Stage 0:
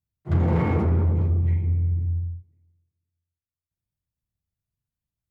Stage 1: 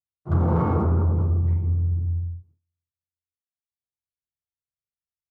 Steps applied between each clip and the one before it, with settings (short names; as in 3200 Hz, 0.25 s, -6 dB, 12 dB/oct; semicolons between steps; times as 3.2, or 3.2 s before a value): resonant high shelf 1600 Hz -7.5 dB, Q 3; gate with hold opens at -51 dBFS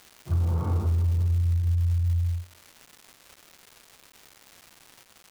bell 86 Hz +13 dB 0.45 oct; compressor, threshold -13 dBFS, peak gain reduction 7.5 dB; crackle 500/s -29 dBFS; gain -8.5 dB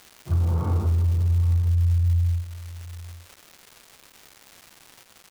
echo 0.822 s -16.5 dB; gain +2.5 dB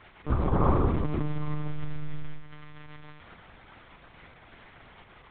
CVSD 64 kbps; reverb RT60 0.45 s, pre-delay 3 ms, DRR 2.5 dB; monotone LPC vocoder at 8 kHz 150 Hz; gain -1.5 dB